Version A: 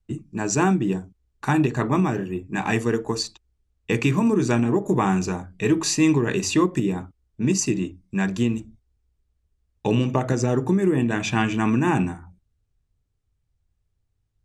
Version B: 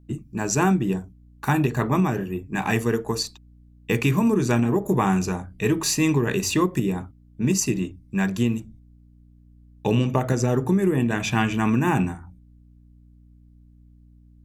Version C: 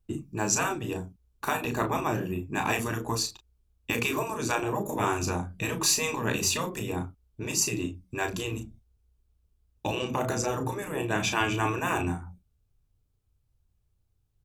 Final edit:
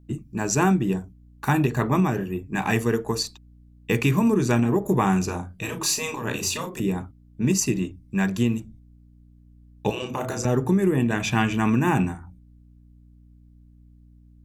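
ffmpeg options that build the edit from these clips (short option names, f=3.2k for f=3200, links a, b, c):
-filter_complex "[2:a]asplit=2[a][b];[1:a]asplit=3[c][d][e];[c]atrim=end=5.292[f];[a]atrim=start=5.288:end=6.802[g];[d]atrim=start=6.798:end=9.902[h];[b]atrim=start=9.898:end=10.452[i];[e]atrim=start=10.448[j];[f][g]acrossfade=d=0.004:c1=hsin:c2=hsin[k];[k][h]acrossfade=d=0.004:c1=hsin:c2=hsin[l];[l][i]acrossfade=d=0.004:c1=hsin:c2=hsin[m];[m][j]acrossfade=d=0.004:c1=hsin:c2=hsin"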